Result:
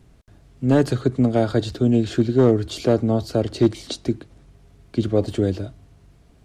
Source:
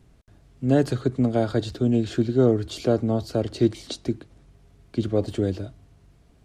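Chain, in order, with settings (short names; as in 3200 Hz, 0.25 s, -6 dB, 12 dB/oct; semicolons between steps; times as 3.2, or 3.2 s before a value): hard clip -10.5 dBFS, distortion -22 dB; gain +3.5 dB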